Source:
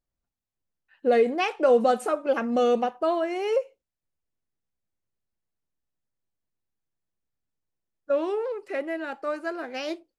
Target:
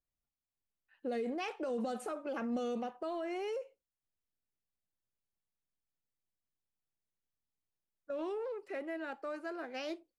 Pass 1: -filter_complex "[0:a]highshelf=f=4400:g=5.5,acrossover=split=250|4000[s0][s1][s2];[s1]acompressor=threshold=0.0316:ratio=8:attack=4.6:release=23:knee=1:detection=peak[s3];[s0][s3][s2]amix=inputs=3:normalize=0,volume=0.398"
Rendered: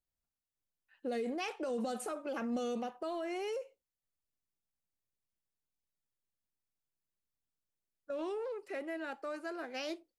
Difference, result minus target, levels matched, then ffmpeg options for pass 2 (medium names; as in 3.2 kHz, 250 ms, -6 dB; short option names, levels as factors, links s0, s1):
8 kHz band +6.0 dB
-filter_complex "[0:a]highshelf=f=4400:g=-2.5,acrossover=split=250|4000[s0][s1][s2];[s1]acompressor=threshold=0.0316:ratio=8:attack=4.6:release=23:knee=1:detection=peak[s3];[s0][s3][s2]amix=inputs=3:normalize=0,volume=0.398"